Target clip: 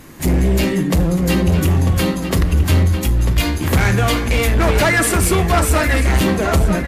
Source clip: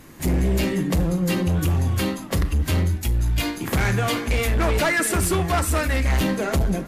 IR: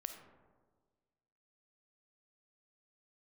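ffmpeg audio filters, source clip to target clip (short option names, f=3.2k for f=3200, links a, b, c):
-filter_complex "[0:a]asplit=2[a][b];[b]adelay=946,lowpass=f=3.8k:p=1,volume=-7.5dB,asplit=2[c][d];[d]adelay=946,lowpass=f=3.8k:p=1,volume=0.38,asplit=2[e][f];[f]adelay=946,lowpass=f=3.8k:p=1,volume=0.38,asplit=2[g][h];[h]adelay=946,lowpass=f=3.8k:p=1,volume=0.38[i];[a][c][e][g][i]amix=inputs=5:normalize=0,volume=5.5dB"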